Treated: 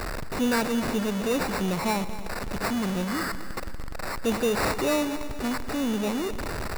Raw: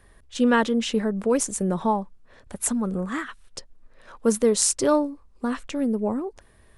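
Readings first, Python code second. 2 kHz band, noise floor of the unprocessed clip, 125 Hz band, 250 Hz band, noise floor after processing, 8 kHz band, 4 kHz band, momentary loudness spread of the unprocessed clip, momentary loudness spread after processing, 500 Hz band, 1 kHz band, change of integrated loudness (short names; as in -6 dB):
+2.0 dB, -55 dBFS, +1.0 dB, -3.0 dB, -32 dBFS, -9.5 dB, 0.0 dB, 17 LU, 10 LU, -3.5 dB, -1.5 dB, -4.0 dB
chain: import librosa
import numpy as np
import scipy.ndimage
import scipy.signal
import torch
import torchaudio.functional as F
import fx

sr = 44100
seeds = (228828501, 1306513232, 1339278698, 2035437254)

y = x + 0.5 * 10.0 ** (-17.0 / 20.0) * np.sign(x)
y = fx.echo_heads(y, sr, ms=117, heads='first and second', feedback_pct=55, wet_db=-16.5)
y = fx.sample_hold(y, sr, seeds[0], rate_hz=3200.0, jitter_pct=0)
y = F.gain(torch.from_numpy(y), -8.5).numpy()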